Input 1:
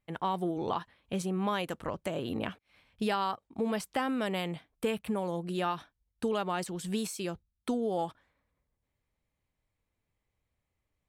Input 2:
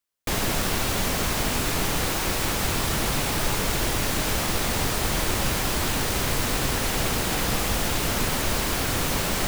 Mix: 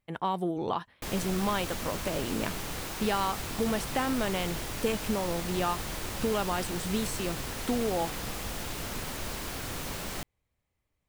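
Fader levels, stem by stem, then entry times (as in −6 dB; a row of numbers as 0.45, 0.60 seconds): +1.5, −11.5 decibels; 0.00, 0.75 seconds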